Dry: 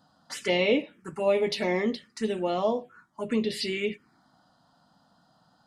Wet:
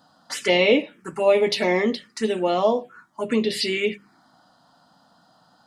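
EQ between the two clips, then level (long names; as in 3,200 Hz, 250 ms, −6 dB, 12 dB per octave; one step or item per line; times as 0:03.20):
low-shelf EQ 150 Hz −8.5 dB
mains-hum notches 50/100/150/200 Hz
+7.0 dB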